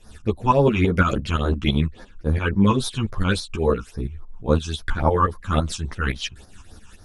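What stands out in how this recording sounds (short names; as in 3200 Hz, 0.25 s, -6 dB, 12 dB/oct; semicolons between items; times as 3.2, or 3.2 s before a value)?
phasing stages 8, 3.6 Hz, lowest notch 540–2800 Hz; tremolo saw up 5.9 Hz, depth 70%; a shimmering, thickened sound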